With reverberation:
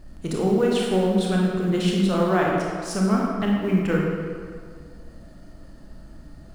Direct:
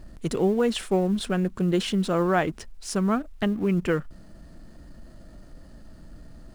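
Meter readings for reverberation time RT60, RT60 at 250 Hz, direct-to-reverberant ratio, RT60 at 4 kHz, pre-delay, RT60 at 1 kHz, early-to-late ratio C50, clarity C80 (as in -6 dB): 2.0 s, 1.8 s, -2.5 dB, 1.2 s, 24 ms, 2.0 s, -0.5 dB, 1.5 dB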